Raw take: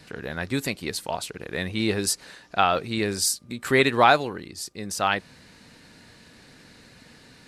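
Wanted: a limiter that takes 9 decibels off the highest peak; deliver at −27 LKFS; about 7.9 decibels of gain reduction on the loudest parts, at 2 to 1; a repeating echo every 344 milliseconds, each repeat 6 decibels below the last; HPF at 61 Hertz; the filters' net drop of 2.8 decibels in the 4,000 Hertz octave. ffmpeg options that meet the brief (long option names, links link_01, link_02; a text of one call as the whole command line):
ffmpeg -i in.wav -af "highpass=61,equalizer=frequency=4000:width_type=o:gain=-3.5,acompressor=threshold=-27dB:ratio=2,alimiter=limit=-18.5dB:level=0:latency=1,aecho=1:1:344|688|1032|1376|1720|2064:0.501|0.251|0.125|0.0626|0.0313|0.0157,volume=4.5dB" out.wav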